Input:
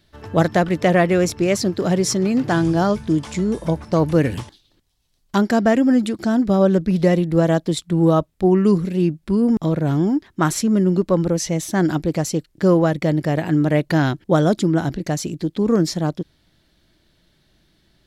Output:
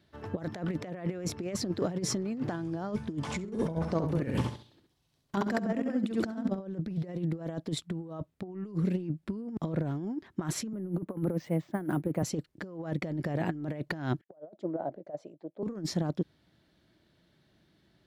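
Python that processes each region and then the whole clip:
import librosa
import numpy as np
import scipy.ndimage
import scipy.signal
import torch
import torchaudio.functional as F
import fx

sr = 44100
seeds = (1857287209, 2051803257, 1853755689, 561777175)

y = fx.chain(x, sr, fx.over_compress(threshold_db=-18.0, ratio=-0.5),
    fx.echo_feedback(ms=67, feedback_pct=27, wet_db=-3.5), at=(3.21, 6.6))
y = fx.chain(y, sr, fx.bandpass_edges(low_hz=100.0, high_hz=2200.0),
    fx.resample_bad(factor=4, down='none', up='hold'),
    fx.band_widen(depth_pct=100), at=(10.73, 12.23))
y = fx.chain(y, sr, fx.auto_wah(base_hz=610.0, top_hz=1900.0, q=5.7, full_db=-23.0, direction='down'),
    fx.over_compress(threshold_db=-31.0, ratio=-0.5),
    fx.band_widen(depth_pct=100), at=(14.21, 15.63))
y = scipy.signal.sosfilt(scipy.signal.butter(2, 89.0, 'highpass', fs=sr, output='sos'), y)
y = fx.high_shelf(y, sr, hz=3000.0, db=-9.5)
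y = fx.over_compress(y, sr, threshold_db=-22.0, ratio=-0.5)
y = y * 10.0 ** (-9.0 / 20.0)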